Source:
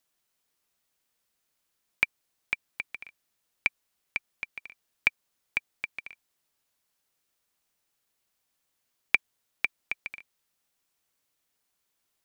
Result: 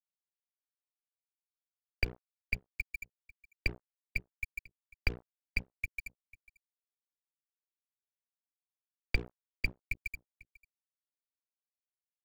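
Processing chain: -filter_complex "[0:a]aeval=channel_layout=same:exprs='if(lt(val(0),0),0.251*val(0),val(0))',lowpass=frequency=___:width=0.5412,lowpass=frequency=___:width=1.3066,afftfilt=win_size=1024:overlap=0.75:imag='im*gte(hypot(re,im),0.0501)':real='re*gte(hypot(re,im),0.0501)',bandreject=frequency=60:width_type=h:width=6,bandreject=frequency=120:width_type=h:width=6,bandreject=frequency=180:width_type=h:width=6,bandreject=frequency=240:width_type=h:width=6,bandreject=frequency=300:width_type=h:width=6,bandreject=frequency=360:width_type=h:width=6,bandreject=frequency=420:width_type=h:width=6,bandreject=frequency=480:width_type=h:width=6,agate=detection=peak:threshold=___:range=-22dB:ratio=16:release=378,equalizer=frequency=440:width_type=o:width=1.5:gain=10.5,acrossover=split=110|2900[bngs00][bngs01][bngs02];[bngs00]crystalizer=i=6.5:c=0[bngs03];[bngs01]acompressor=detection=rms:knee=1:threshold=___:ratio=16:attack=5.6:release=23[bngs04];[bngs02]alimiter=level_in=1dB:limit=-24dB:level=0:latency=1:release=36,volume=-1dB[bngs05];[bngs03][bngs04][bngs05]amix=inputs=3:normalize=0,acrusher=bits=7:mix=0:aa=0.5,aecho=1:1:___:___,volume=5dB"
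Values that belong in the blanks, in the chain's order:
4700, 4700, -56dB, -40dB, 495, 0.0794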